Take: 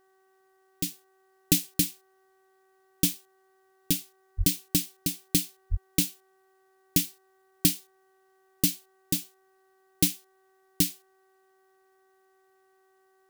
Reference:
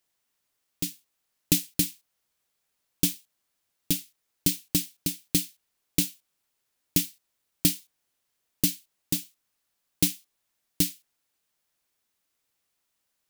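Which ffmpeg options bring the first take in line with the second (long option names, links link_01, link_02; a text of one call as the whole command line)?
ffmpeg -i in.wav -filter_complex "[0:a]bandreject=frequency=381:width_type=h:width=4,bandreject=frequency=762:width_type=h:width=4,bandreject=frequency=1143:width_type=h:width=4,bandreject=frequency=1524:width_type=h:width=4,bandreject=frequency=1905:width_type=h:width=4,asplit=3[link_01][link_02][link_03];[link_01]afade=type=out:start_time=4.37:duration=0.02[link_04];[link_02]highpass=frequency=140:width=0.5412,highpass=frequency=140:width=1.3066,afade=type=in:start_time=4.37:duration=0.02,afade=type=out:start_time=4.49:duration=0.02[link_05];[link_03]afade=type=in:start_time=4.49:duration=0.02[link_06];[link_04][link_05][link_06]amix=inputs=3:normalize=0,asplit=3[link_07][link_08][link_09];[link_07]afade=type=out:start_time=5.7:duration=0.02[link_10];[link_08]highpass=frequency=140:width=0.5412,highpass=frequency=140:width=1.3066,afade=type=in:start_time=5.7:duration=0.02,afade=type=out:start_time=5.82:duration=0.02[link_11];[link_09]afade=type=in:start_time=5.82:duration=0.02[link_12];[link_10][link_11][link_12]amix=inputs=3:normalize=0" out.wav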